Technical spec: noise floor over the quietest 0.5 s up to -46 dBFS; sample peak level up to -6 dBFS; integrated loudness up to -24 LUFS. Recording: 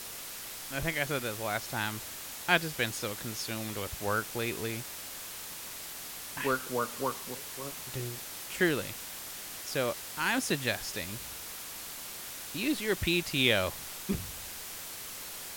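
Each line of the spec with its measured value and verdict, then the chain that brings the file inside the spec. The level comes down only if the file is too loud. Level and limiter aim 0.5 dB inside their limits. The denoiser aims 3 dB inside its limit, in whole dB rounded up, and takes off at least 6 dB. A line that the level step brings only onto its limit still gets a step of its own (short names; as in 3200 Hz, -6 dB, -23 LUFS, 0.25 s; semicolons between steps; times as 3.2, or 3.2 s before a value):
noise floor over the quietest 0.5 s -43 dBFS: fail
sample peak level -8.5 dBFS: OK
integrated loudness -33.5 LUFS: OK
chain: denoiser 6 dB, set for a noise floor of -43 dBFS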